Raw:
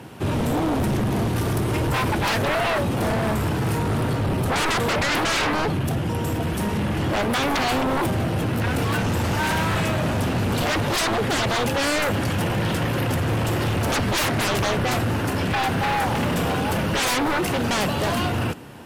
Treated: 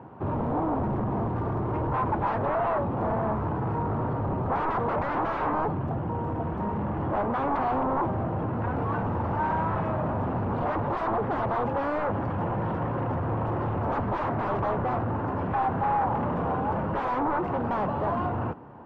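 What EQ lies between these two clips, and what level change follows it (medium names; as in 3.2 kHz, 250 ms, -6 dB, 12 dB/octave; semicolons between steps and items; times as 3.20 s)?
resonant low-pass 1 kHz, resonance Q 2.1; -6.5 dB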